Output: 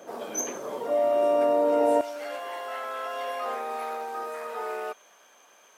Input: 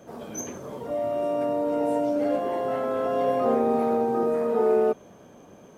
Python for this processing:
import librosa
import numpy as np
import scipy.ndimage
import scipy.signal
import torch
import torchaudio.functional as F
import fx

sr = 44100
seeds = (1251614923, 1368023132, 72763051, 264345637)

y = fx.highpass(x, sr, hz=fx.steps((0.0, 400.0), (2.01, 1400.0)), slope=12)
y = y * 10.0 ** (5.0 / 20.0)